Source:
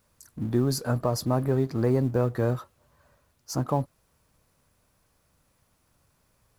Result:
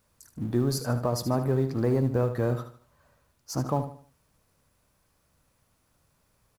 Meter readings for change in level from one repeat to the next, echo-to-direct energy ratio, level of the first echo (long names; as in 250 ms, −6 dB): −9.0 dB, −10.0 dB, −10.5 dB